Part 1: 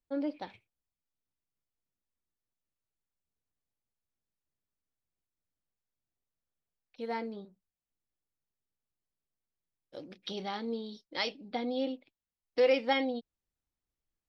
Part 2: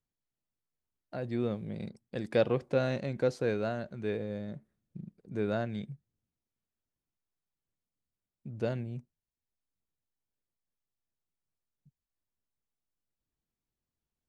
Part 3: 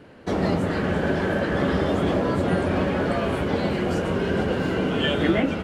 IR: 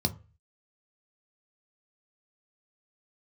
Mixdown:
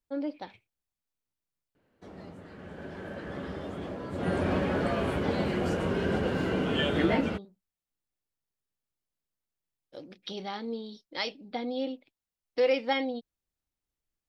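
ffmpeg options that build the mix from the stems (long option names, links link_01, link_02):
-filter_complex "[0:a]volume=0.5dB[link_01];[2:a]adelay=1750,volume=-5dB,afade=type=in:start_time=2.53:duration=0.7:silence=0.398107,afade=type=in:start_time=4.1:duration=0.27:silence=0.298538[link_02];[link_01][link_02]amix=inputs=2:normalize=0"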